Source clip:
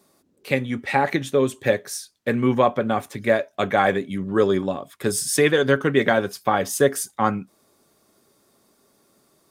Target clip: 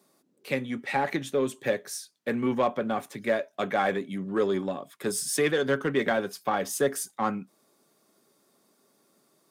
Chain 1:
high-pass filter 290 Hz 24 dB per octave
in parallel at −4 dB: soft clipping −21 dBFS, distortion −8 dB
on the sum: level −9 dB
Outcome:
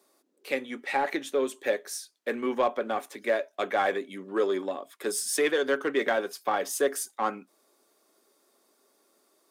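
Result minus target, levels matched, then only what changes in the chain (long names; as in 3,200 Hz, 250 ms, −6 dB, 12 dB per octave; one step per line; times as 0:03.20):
125 Hz band −16.0 dB
change: high-pass filter 140 Hz 24 dB per octave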